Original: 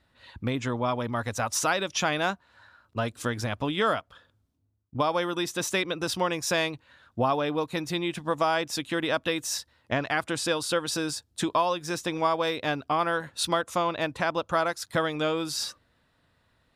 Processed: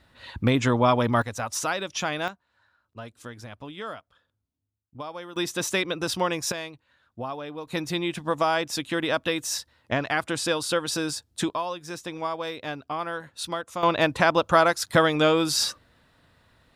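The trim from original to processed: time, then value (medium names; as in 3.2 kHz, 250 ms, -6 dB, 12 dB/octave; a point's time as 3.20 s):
+7.5 dB
from 1.22 s -2 dB
from 2.28 s -11 dB
from 5.36 s +1.5 dB
from 6.52 s -8.5 dB
from 7.67 s +1.5 dB
from 11.50 s -5 dB
from 13.83 s +7 dB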